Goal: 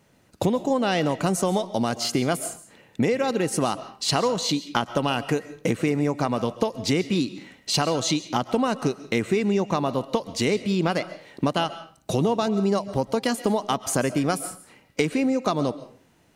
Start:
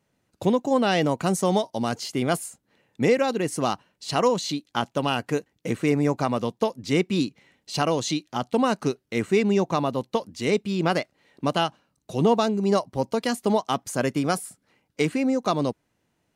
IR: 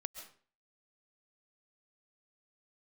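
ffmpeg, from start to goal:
-filter_complex "[0:a]acompressor=threshold=-33dB:ratio=5,asplit=2[a][b];[1:a]atrim=start_sample=2205[c];[b][c]afir=irnorm=-1:irlink=0,volume=0.5dB[d];[a][d]amix=inputs=2:normalize=0,volume=7dB"

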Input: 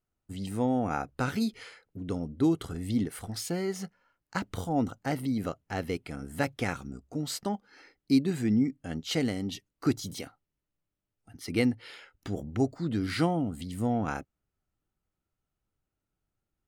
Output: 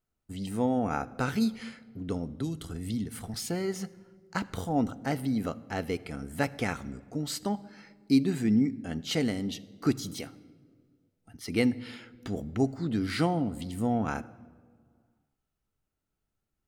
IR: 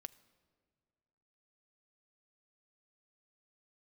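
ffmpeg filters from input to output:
-filter_complex "[0:a]asettb=1/sr,asplit=3[a][b][c];[a]atrim=end=2.294[d];[b]atrim=start=2.29:end=3.34,asetpts=PTS-STARTPTS,afade=t=in:d=0.004:c=qsin,afade=t=out:st=1.046:d=0.004:c=qsin,acrossover=split=190|3000[e][f][g];[f]acompressor=threshold=-38dB:ratio=6[h];[e][h][g]amix=inputs=3:normalize=0[i];[c]atrim=start=3.336[j];[d][i]acrossfade=d=0.004:c1=hsin:c2=qsin[k];[k][j]acrossfade=d=0.004:c1=qsin:c2=hsin[l];[1:a]atrim=start_sample=2205[m];[l][m]afir=irnorm=-1:irlink=0,volume=6dB"

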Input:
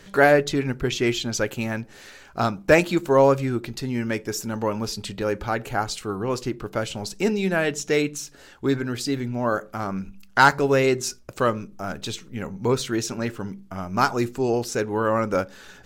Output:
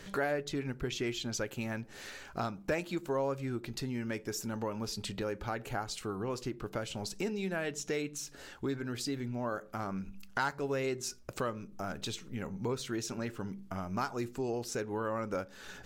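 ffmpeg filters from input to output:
-af "acompressor=threshold=-36dB:ratio=2.5,volume=-1.5dB"

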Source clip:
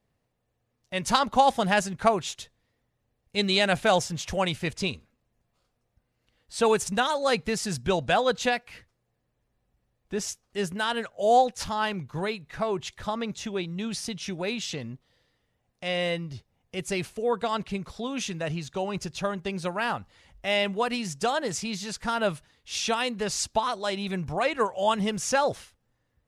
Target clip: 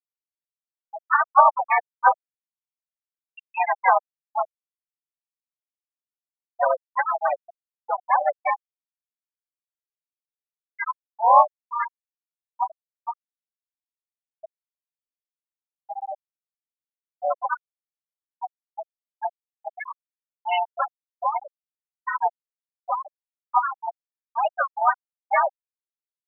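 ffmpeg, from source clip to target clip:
-filter_complex "[0:a]highpass=f=500:t=q:w=0.5412,highpass=f=500:t=q:w=1.307,lowpass=f=3.2k:t=q:w=0.5176,lowpass=f=3.2k:t=q:w=0.7071,lowpass=f=3.2k:t=q:w=1.932,afreqshift=97,asplit=4[a][b][c][d];[b]asetrate=29433,aresample=44100,atempo=1.49831,volume=-10dB[e];[c]asetrate=55563,aresample=44100,atempo=0.793701,volume=0dB[f];[d]asetrate=58866,aresample=44100,atempo=0.749154,volume=-10dB[g];[a][e][f][g]amix=inputs=4:normalize=0,afftfilt=real='re*gte(hypot(re,im),0.355)':imag='im*gte(hypot(re,im),0.355)':win_size=1024:overlap=0.75,volume=3dB"

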